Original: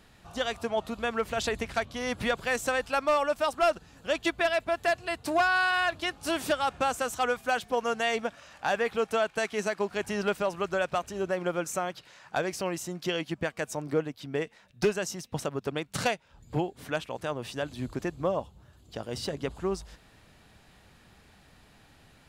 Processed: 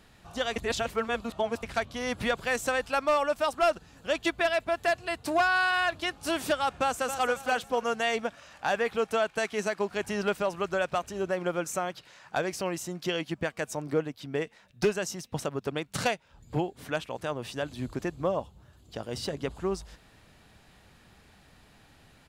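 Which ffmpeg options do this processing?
ffmpeg -i in.wav -filter_complex "[0:a]asplit=2[link_01][link_02];[link_02]afade=type=in:start_time=6.81:duration=0.01,afade=type=out:start_time=7.29:duration=0.01,aecho=0:1:270|540|810:0.334965|0.10049|0.0301469[link_03];[link_01][link_03]amix=inputs=2:normalize=0,asplit=3[link_04][link_05][link_06];[link_04]atrim=end=0.562[link_07];[link_05]atrim=start=0.558:end=1.632,asetpts=PTS-STARTPTS,areverse[link_08];[link_06]atrim=start=1.628[link_09];[link_07][link_08]acrossfade=duration=0.004:curve1=hsin:curve2=hsin[link_10];[link_10][link_09]acrossfade=duration=0.004:curve1=hsin:curve2=hsin" out.wav

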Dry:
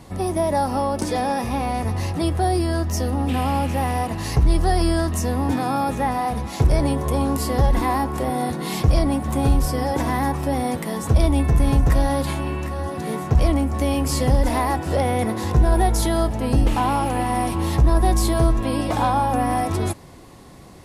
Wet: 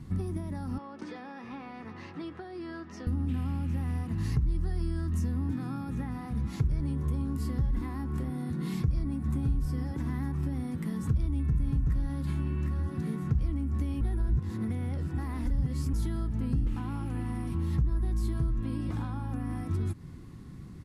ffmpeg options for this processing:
ffmpeg -i in.wav -filter_complex "[0:a]asettb=1/sr,asplit=3[link_01][link_02][link_03];[link_01]atrim=end=0.784[link_04];[link_02]atrim=start=0.78:end=3.07,asetpts=PTS-STARTPTS,afade=type=in:duration=0.004:curve=qsin,afade=type=out:start_time=2.286:duration=0.004:curve=qsin,highpass=460,lowpass=3500[link_05];[link_03]atrim=start=3.066[link_06];[link_04][link_05]acrossfade=duration=0.004:curve1=hsin:curve2=qsin[link_07];[link_07][link_06]acrossfade=duration=0.004:curve1=qsin:curve2=hsin,asettb=1/sr,asplit=3[link_08][link_09][link_10];[link_08]atrim=end=8.774[link_11];[link_09]atrim=start=8.77:end=9.35,asetpts=PTS-STARTPTS,afade=type=in:duration=0.004:curve=qsin,afade=type=out:start_time=0.576:duration=0.004:curve=qsin,bandreject=frequency=3100:width=11[link_12];[link_10]atrim=start=9.346[link_13];[link_11][link_12]acrossfade=duration=0.004:curve1=hsin:curve2=qsin[link_14];[link_14][link_13]acrossfade=duration=0.004:curve1=qsin:curve2=hsin,asplit=3[link_15][link_16][link_17];[link_15]atrim=end=14.012[link_18];[link_16]atrim=start=14.008:end=15.932,asetpts=PTS-STARTPTS,areverse[link_19];[link_17]atrim=start=15.928[link_20];[link_18][link_19]acrossfade=duration=0.004:curve1=hsin:curve2=hsin[link_21];[link_21][link_20]acrossfade=duration=0.004:curve1=hsin:curve2=hsin,equalizer=frequency=260:width=0.36:gain=3.5,acompressor=threshold=-24dB:ratio=6,firequalizer=gain_entry='entry(150,0);entry(610,-24);entry(1300,-9);entry(2700,-13);entry(9300,-15)':delay=0.05:min_phase=1" out.wav

